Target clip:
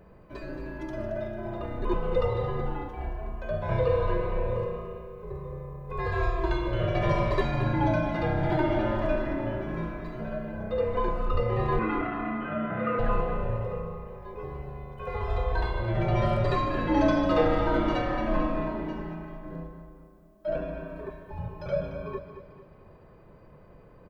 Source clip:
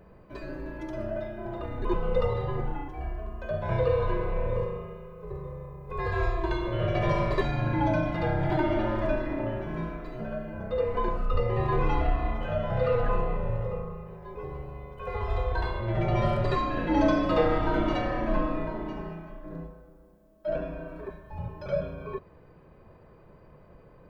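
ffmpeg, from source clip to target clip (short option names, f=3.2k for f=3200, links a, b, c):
-filter_complex "[0:a]asettb=1/sr,asplit=3[a][b][c];[a]atrim=end=11.794[d];[b]atrim=start=11.79:end=12.99,asetpts=PTS-STARTPTS,afade=t=in:d=0.004:c=qsin,afade=t=out:st=1.196:d=0.004:c=qsin,highpass=200,equalizer=f=220:t=q:w=4:g=10,equalizer=f=320:t=q:w=4:g=6,equalizer=f=530:t=q:w=4:g=-9,equalizer=f=850:t=q:w=4:g=-9,equalizer=f=1.3k:t=q:w=4:g=9,equalizer=f=2.1k:t=q:w=4:g=3,lowpass=f=2.7k:w=0.5412,lowpass=f=2.7k:w=1.3066[e];[c]atrim=start=12.986[f];[d][e]acrossfade=d=0.004:c1=hsin:c2=qsin[g];[g][f]acrossfade=d=0.004:c1=qsin:c2=hsin,aecho=1:1:223|446|669|892|1115:0.316|0.139|0.0612|0.0269|0.0119"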